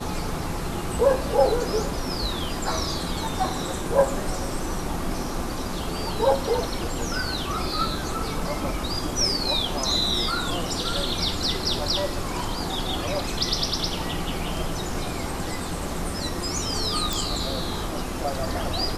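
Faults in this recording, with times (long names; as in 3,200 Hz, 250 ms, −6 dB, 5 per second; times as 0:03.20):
0:17.13: click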